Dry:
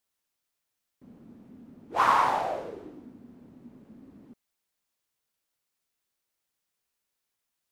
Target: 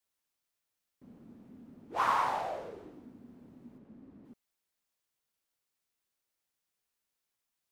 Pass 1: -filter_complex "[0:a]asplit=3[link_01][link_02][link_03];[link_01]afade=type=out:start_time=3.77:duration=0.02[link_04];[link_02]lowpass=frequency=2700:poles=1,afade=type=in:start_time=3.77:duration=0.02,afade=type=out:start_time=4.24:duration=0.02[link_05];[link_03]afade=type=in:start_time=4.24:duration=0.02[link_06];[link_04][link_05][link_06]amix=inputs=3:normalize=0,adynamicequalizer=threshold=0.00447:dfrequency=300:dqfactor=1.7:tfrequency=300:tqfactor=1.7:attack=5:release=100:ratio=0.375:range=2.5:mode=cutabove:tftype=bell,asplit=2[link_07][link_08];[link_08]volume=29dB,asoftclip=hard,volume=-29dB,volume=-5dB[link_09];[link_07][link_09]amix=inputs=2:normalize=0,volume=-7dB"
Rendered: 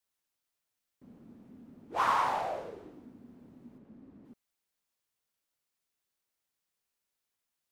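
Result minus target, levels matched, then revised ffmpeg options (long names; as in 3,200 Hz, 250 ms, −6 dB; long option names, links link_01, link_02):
gain into a clipping stage and back: distortion −5 dB
-filter_complex "[0:a]asplit=3[link_01][link_02][link_03];[link_01]afade=type=out:start_time=3.77:duration=0.02[link_04];[link_02]lowpass=frequency=2700:poles=1,afade=type=in:start_time=3.77:duration=0.02,afade=type=out:start_time=4.24:duration=0.02[link_05];[link_03]afade=type=in:start_time=4.24:duration=0.02[link_06];[link_04][link_05][link_06]amix=inputs=3:normalize=0,adynamicequalizer=threshold=0.00447:dfrequency=300:dqfactor=1.7:tfrequency=300:tqfactor=1.7:attack=5:release=100:ratio=0.375:range=2.5:mode=cutabove:tftype=bell,asplit=2[link_07][link_08];[link_08]volume=39.5dB,asoftclip=hard,volume=-39.5dB,volume=-5dB[link_09];[link_07][link_09]amix=inputs=2:normalize=0,volume=-7dB"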